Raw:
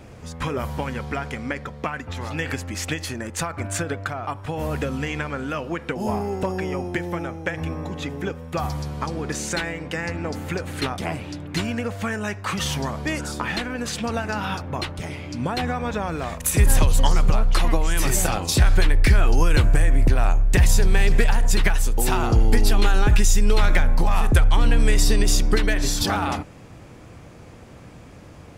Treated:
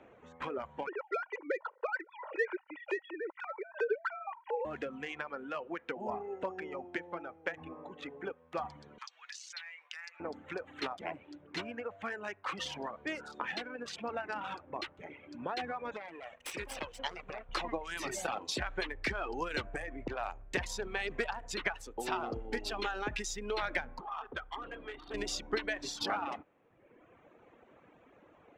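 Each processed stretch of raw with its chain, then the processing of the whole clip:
0.87–4.65 s: formants replaced by sine waves + distance through air 330 m + comb 2.1 ms, depth 83%
8.98–10.20 s: Bessel high-pass 1.6 kHz, order 4 + peaking EQ 5.3 kHz +13 dB 1.7 oct + compression 3:1, threshold -31 dBFS
15.96–17.49 s: comb filter that takes the minimum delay 0.37 ms + bass shelf 420 Hz -8 dB
24.00–25.14 s: comb filter that takes the minimum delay 2.5 ms + rippled Chebyshev low-pass 4.6 kHz, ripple 9 dB
whole clip: local Wiener filter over 9 samples; reverb removal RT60 1.2 s; three-band isolator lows -20 dB, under 270 Hz, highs -19 dB, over 6.2 kHz; trim -8.5 dB

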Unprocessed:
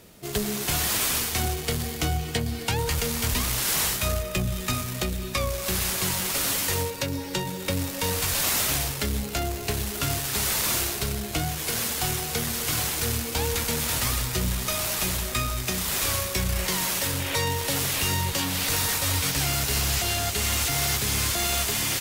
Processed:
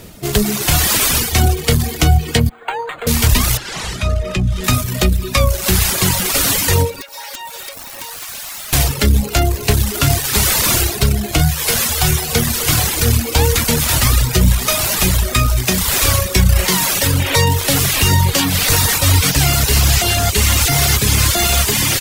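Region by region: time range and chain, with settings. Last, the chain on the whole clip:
2.49–3.07 s: high-pass 130 Hz 24 dB/octave + three-band isolator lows -23 dB, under 520 Hz, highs -17 dB, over 2.3 kHz + decimation joined by straight lines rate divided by 8×
3.57–4.64 s: compression 3:1, threshold -28 dBFS + distance through air 70 m
7.01–8.73 s: inverse Chebyshev high-pass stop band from 190 Hz, stop band 60 dB + compression 12:1, threshold -35 dBFS + integer overflow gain 30.5 dB
11.38–12.33 s: peaking EQ 270 Hz -9 dB 0.75 oct + doubling 13 ms -7.5 dB
whole clip: reverb removal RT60 0.93 s; bass shelf 150 Hz +7 dB; loudness maximiser +13.5 dB; trim -1 dB

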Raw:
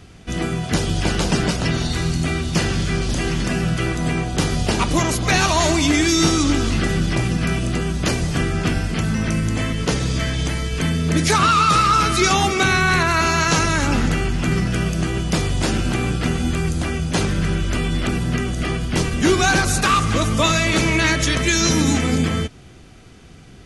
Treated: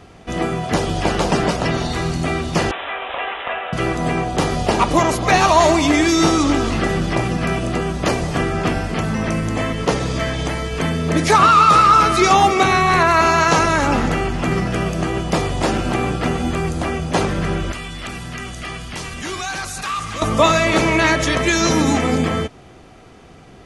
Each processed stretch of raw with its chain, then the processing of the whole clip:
2.71–3.73 s: inverse Chebyshev high-pass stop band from 170 Hz, stop band 60 dB + careless resampling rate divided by 6×, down none, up filtered
17.72–20.22 s: amplifier tone stack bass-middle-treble 5-5-5 + level flattener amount 70%
whole clip: peaking EQ 760 Hz +11.5 dB 2.6 oct; band-stop 1.5 kHz, Q 17; trim -3.5 dB

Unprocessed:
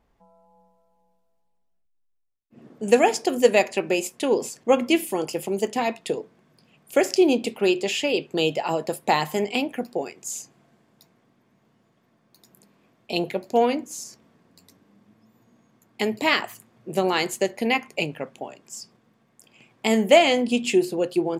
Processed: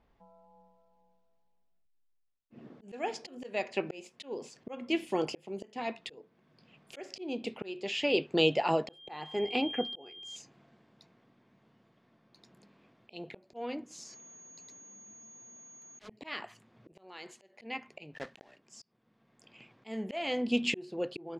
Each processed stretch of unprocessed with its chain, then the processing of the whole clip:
8.87–10.35 s: treble shelf 3.9 kHz -9.5 dB + whistle 3.2 kHz -38 dBFS + comb 2.5 ms, depth 36%
14.03–16.07 s: bass shelf 180 Hz -9.5 dB + whistle 6.6 kHz -40 dBFS + integer overflow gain 21.5 dB
16.92–17.60 s: high-pass 310 Hz 6 dB/octave + compression 2:1, threshold -38 dBFS
18.14–18.60 s: block-companded coder 3-bit + peaking EQ 1.8 kHz +12.5 dB 0.21 oct
whole clip: Chebyshev low-pass 4 kHz, order 2; slow attack 606 ms; trim -1.5 dB

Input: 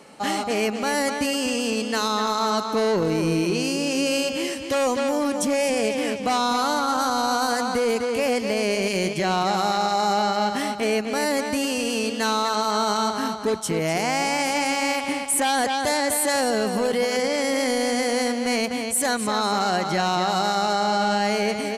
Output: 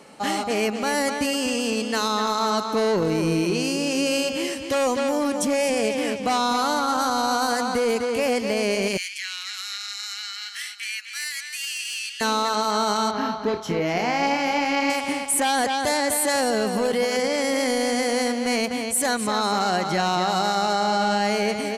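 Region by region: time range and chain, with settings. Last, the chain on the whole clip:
8.97–12.21 s: steep high-pass 1.7 kHz + hard clipper -18.5 dBFS
13.11–14.90 s: boxcar filter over 5 samples + flutter echo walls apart 4.9 m, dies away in 0.23 s
whole clip: none

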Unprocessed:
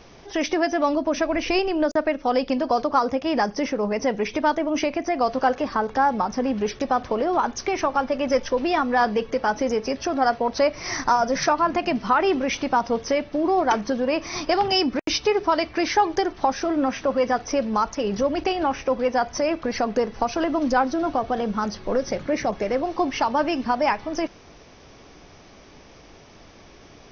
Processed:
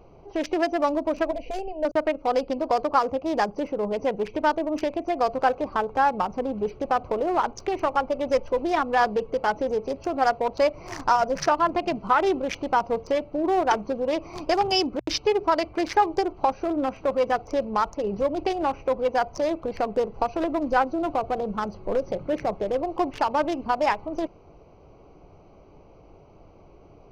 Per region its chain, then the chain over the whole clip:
1.31–1.85 s: distance through air 100 m + static phaser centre 340 Hz, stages 6
whole clip: local Wiener filter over 25 samples; peaking EQ 240 Hz -8.5 dB 0.48 oct; hum notches 60/120 Hz

